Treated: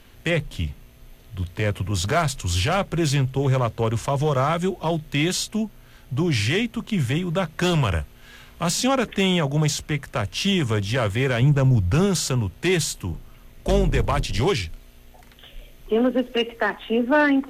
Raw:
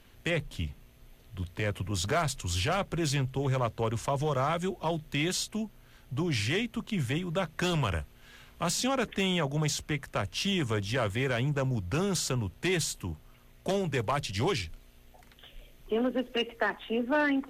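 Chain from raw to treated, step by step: 13.13–14.40 s: octave divider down 2 oct, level +3 dB; harmonic-percussive split harmonic +4 dB; 11.42–12.06 s: bass shelf 120 Hz +10 dB; trim +5 dB

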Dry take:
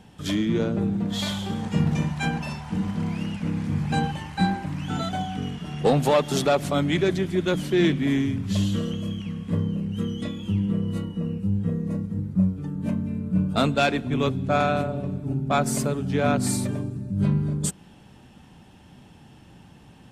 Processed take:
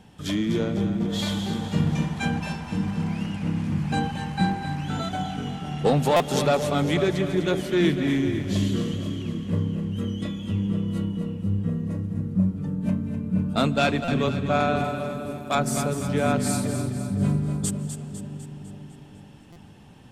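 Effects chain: 14.84–15.55 s: RIAA curve recording; two-band feedback delay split 560 Hz, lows 497 ms, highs 251 ms, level -9 dB; reverberation RT60 4.3 s, pre-delay 120 ms, DRR 15 dB; buffer glitch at 6.16/14.04/19.52 s, samples 256, times 6; trim -1 dB

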